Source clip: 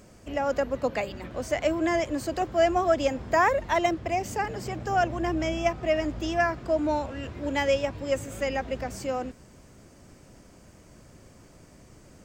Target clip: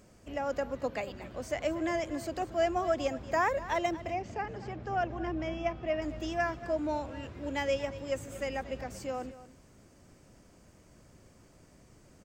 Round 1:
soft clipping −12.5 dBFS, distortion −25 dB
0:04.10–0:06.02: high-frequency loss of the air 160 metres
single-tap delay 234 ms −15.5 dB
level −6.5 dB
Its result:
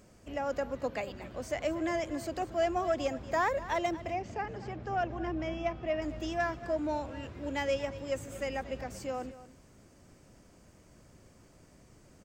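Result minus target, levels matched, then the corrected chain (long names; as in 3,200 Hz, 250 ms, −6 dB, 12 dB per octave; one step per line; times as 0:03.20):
soft clipping: distortion +21 dB
soft clipping −1 dBFS, distortion −46 dB
0:04.10–0:06.02: high-frequency loss of the air 160 metres
single-tap delay 234 ms −15.5 dB
level −6.5 dB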